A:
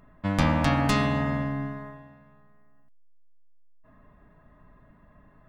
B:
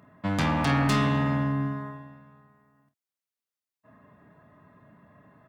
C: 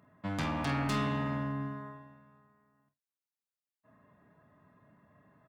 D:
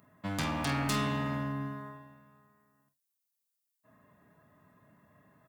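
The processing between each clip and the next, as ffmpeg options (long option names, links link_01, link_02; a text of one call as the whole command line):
ffmpeg -i in.wav -filter_complex "[0:a]highpass=frequency=97:width=0.5412,highpass=frequency=97:width=1.3066,asoftclip=type=tanh:threshold=-21dB,asplit=2[link_01][link_02];[link_02]aecho=0:1:28|50:0.299|0.188[link_03];[link_01][link_03]amix=inputs=2:normalize=0,volume=2dB" out.wav
ffmpeg -i in.wav -filter_complex "[0:a]asplit=2[link_01][link_02];[link_02]adelay=48,volume=-12.5dB[link_03];[link_01][link_03]amix=inputs=2:normalize=0,volume=-8dB" out.wav
ffmpeg -i in.wav -af "crystalizer=i=2:c=0" out.wav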